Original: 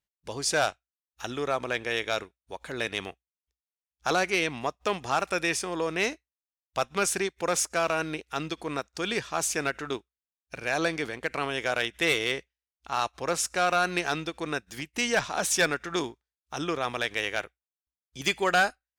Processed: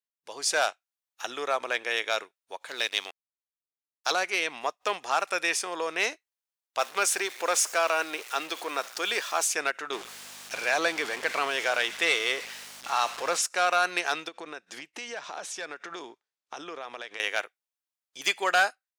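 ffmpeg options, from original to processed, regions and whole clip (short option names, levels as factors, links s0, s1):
-filter_complex "[0:a]asettb=1/sr,asplit=3[s0][s1][s2];[s0]atrim=end=2.684[s3];[s1]atrim=start=2.68:end=4.12,asetpts=PTS-STARTPTS,afade=t=in:d=0.004:c=qsin,afade=t=out:st=1.436:d=0.004:c=qsin,equalizer=f=4500:t=o:w=1:g=12,aeval=exprs='sgn(val(0))*max(abs(val(0))-0.00562,0)':c=same[s4];[s2]atrim=start=4.116[s5];[s3][s4]acrossfade=d=0.004:c1=hsin:c2=qsin[s6];[s6][s5]acrossfade=d=0.004:c1=qsin:c2=hsin,asettb=1/sr,asplit=3[s7][s8][s9];[s7]atrim=end=6.794[s10];[s8]atrim=start=6.79:end=9.43,asetpts=PTS-STARTPTS,afade=t=in:d=0.004:c=qsin,afade=t=out:st=2.636:d=0.004:c=qsin,aeval=exprs='val(0)+0.5*0.0141*sgn(val(0))':c=same,highpass=250[s11];[s9]atrim=start=9.426[s12];[s10][s11]acrossfade=d=0.004:c1=hsin:c2=qsin[s13];[s13][s12]acrossfade=d=0.004:c1=qsin:c2=hsin,asettb=1/sr,asplit=3[s14][s15][s16];[s14]atrim=end=9.934[s17];[s15]atrim=start=9.93:end=13.42,asetpts=PTS-STARTPTS,afade=t=in:d=0.004:c=qsin,afade=t=out:st=3.486:d=0.004:c=qsin,aeval=exprs='val(0)+0.5*0.0266*sgn(val(0))':c=same,acrossover=split=9600[s18][s19];[s19]acompressor=threshold=0.00178:ratio=4:attack=1:release=60[s20];[s18][s20]amix=inputs=2:normalize=0,aeval=exprs='val(0)+0.0112*(sin(2*PI*50*n/s)+sin(2*PI*2*50*n/s)/2+sin(2*PI*3*50*n/s)/3+sin(2*PI*4*50*n/s)/4+sin(2*PI*5*50*n/s)/5)':c=same[s21];[s16]atrim=start=13.416[s22];[s17][s21]acrossfade=d=0.004:c1=hsin:c2=qsin[s23];[s23][s22]acrossfade=d=0.004:c1=qsin:c2=hsin,asettb=1/sr,asplit=3[s24][s25][s26];[s24]atrim=end=14.284[s27];[s25]atrim=start=14.28:end=17.2,asetpts=PTS-STARTPTS,afade=t=in:d=0.004:c=qsin,afade=t=out:st=2.916:d=0.004:c=qsin,lowpass=7400,acompressor=threshold=0.0126:ratio=5:attack=3.2:release=140:knee=1:detection=peak,equalizer=f=200:w=0.31:g=6[s28];[s26]atrim=start=17.196[s29];[s27][s28]acrossfade=d=0.004:c1=hsin:c2=qsin[s30];[s30][s29]acrossfade=d=0.004:c1=qsin:c2=hsin,highpass=550,dynaudnorm=f=120:g=5:m=3.55,volume=0.376"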